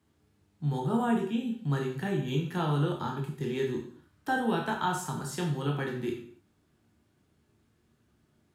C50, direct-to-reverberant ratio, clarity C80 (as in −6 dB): 5.5 dB, 0.0 dB, 9.5 dB